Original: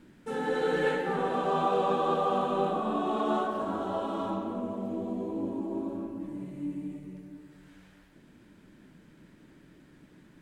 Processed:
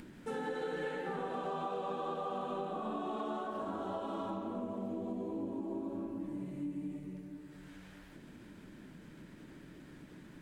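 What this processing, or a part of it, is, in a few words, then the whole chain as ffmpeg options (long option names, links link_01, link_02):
upward and downward compression: -af "acompressor=mode=upward:threshold=-44dB:ratio=2.5,acompressor=threshold=-34dB:ratio=6,volume=-1.5dB"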